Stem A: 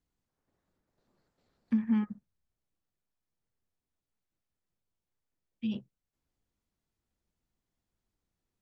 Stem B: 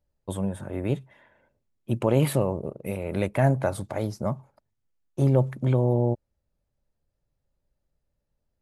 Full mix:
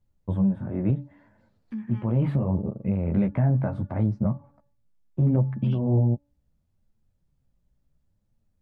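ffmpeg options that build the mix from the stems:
-filter_complex "[0:a]alimiter=level_in=3.5dB:limit=-24dB:level=0:latency=1:release=92,volume=-3.5dB,volume=2dB,asplit=2[a][b];[1:a]lowpass=1.6k,lowshelf=f=300:t=q:w=1.5:g=8,bandreject=f=287.1:t=h:w=4,bandreject=f=574.2:t=h:w=4,bandreject=f=861.3:t=h:w=4,bandreject=f=1.1484k:t=h:w=4,bandreject=f=1.4355k:t=h:w=4,bandreject=f=1.7226k:t=h:w=4,volume=2.5dB[c];[b]apad=whole_len=379970[d];[c][d]sidechaincompress=threshold=-41dB:ratio=3:attack=16:release=330[e];[a][e]amix=inputs=2:normalize=0,flanger=delay=9.2:depth=7.9:regen=-12:speed=0.72:shape=sinusoidal,alimiter=limit=-14.5dB:level=0:latency=1:release=206"

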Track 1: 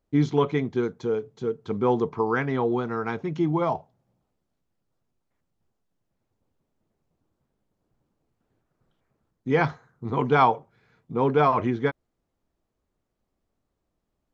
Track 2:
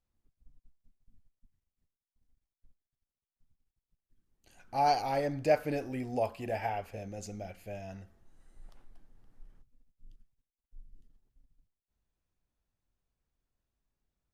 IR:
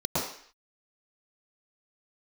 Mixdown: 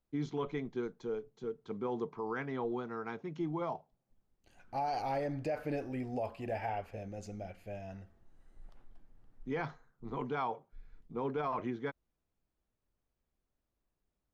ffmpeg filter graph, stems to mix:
-filter_complex "[0:a]highpass=140,volume=-11.5dB[a];[1:a]highshelf=f=5k:g=-11.5,volume=-1.5dB[b];[a][b]amix=inputs=2:normalize=0,alimiter=level_in=3dB:limit=-24dB:level=0:latency=1:release=32,volume=-3dB"

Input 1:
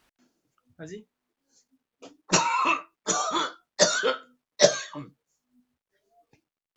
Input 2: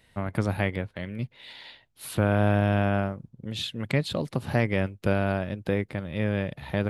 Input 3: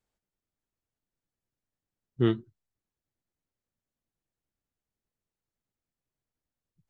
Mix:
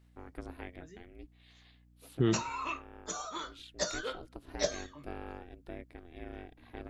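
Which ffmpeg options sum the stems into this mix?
-filter_complex "[0:a]volume=-13.5dB[a];[1:a]aeval=exprs='val(0)*sin(2*PI*170*n/s)':c=same,aeval=exprs='val(0)+0.00501*(sin(2*PI*60*n/s)+sin(2*PI*2*60*n/s)/2+sin(2*PI*3*60*n/s)/3+sin(2*PI*4*60*n/s)/4+sin(2*PI*5*60*n/s)/5)':c=same,volume=-15.5dB[b];[2:a]alimiter=limit=-20dB:level=0:latency=1,volume=2dB,asplit=2[c][d];[d]apad=whole_len=304100[e];[b][e]sidechaincompress=threshold=-45dB:ratio=3:attack=34:release=919[f];[a][f][c]amix=inputs=3:normalize=0"

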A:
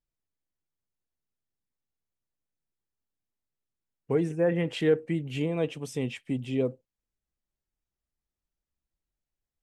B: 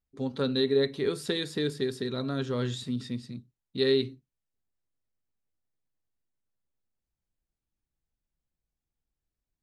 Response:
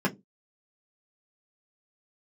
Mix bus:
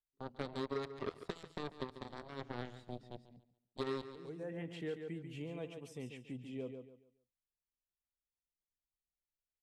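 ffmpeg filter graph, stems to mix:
-filter_complex "[0:a]volume=-15dB,asplit=2[a][b];[b]volume=-8dB[c];[1:a]agate=range=-21dB:threshold=-39dB:ratio=16:detection=peak,highshelf=f=2.8k:g=-11,aeval=exprs='0.224*(cos(1*acos(clip(val(0)/0.224,-1,1)))-cos(1*PI/2))+0.00158*(cos(5*acos(clip(val(0)/0.224,-1,1)))-cos(5*PI/2))+0.0398*(cos(7*acos(clip(val(0)/0.224,-1,1)))-cos(7*PI/2))':c=same,volume=-3.5dB,asplit=3[d][e][f];[e]volume=-16dB[g];[f]apad=whole_len=424359[h];[a][h]sidechaincompress=threshold=-44dB:ratio=8:attack=16:release=438[i];[c][g]amix=inputs=2:normalize=0,aecho=0:1:141|282|423|564:1|0.29|0.0841|0.0244[j];[i][d][j]amix=inputs=3:normalize=0,acrossover=split=970|2500[k][l][m];[k]acompressor=threshold=-38dB:ratio=4[n];[l]acompressor=threshold=-50dB:ratio=4[o];[m]acompressor=threshold=-55dB:ratio=4[p];[n][o][p]amix=inputs=3:normalize=0"

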